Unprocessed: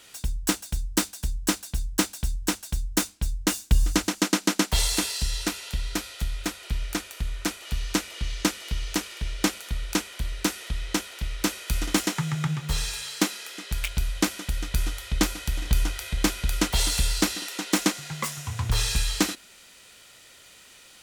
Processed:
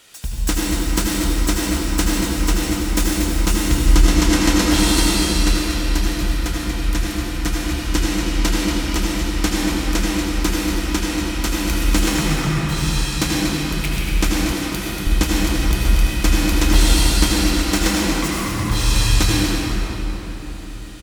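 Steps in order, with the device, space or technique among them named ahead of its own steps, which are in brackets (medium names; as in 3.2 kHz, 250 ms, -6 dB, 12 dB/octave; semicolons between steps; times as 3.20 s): cave (delay 235 ms -8.5 dB; reverberation RT60 4.3 s, pre-delay 71 ms, DRR -5 dB); 14.52–15.07 s: high-pass 110 Hz 12 dB/octave; trim +1.5 dB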